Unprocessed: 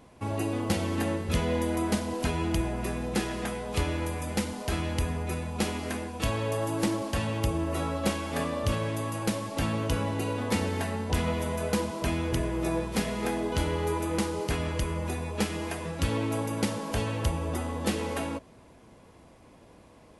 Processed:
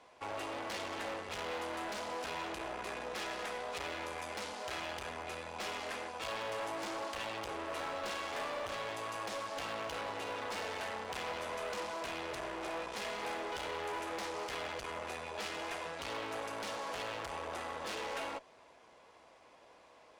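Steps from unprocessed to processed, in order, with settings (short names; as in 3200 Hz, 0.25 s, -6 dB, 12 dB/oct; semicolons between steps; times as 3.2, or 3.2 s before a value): tube stage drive 34 dB, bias 0.75; three-band isolator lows -21 dB, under 470 Hz, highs -18 dB, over 7400 Hz; hard clip -38 dBFS, distortion -15 dB; gain +3.5 dB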